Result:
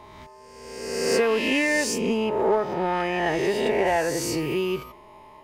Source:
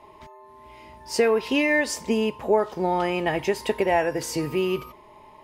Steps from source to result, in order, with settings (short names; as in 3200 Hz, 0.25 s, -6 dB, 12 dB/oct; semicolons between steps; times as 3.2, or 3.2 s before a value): spectral swells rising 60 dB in 1.28 s; 1.98–3.86 high shelf 6500 Hz -8.5 dB; in parallel at -5 dB: soft clip -20.5 dBFS, distortion -10 dB; on the sum: gain -5 dB